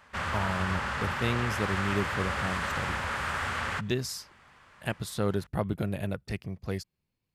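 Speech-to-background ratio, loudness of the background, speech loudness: -2.5 dB, -31.5 LUFS, -34.0 LUFS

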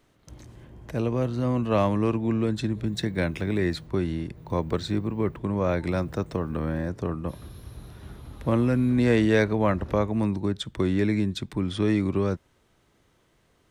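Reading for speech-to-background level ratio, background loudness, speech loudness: 19.0 dB, -45.5 LUFS, -26.5 LUFS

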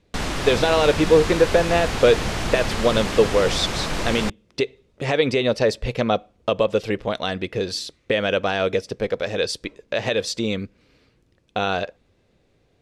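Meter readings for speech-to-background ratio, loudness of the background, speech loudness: 4.0 dB, -26.0 LUFS, -22.0 LUFS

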